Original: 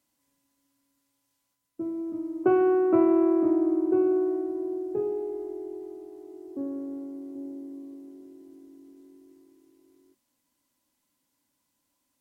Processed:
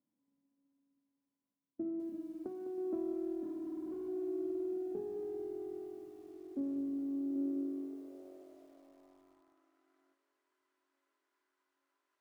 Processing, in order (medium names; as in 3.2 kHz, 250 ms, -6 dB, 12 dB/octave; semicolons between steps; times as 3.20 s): partial rectifier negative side -7 dB; bass shelf 190 Hz -7 dB; hum notches 60/120/180/240/300 Hz; compression 16:1, threshold -33 dBFS, peak gain reduction 14.5 dB; 2.09–2.78 s: feedback comb 200 Hz, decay 0.3 s, harmonics odd, mix 40%; 3.43–4.08 s: hard clipper -37 dBFS, distortion -16 dB; band-pass sweep 210 Hz -> 1.4 kHz, 6.91–9.80 s; on a send: feedback echo behind a high-pass 874 ms, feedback 74%, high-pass 2.2 kHz, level -12.5 dB; on the sum: bit-crushed delay 205 ms, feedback 35%, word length 12-bit, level -9 dB; trim +7.5 dB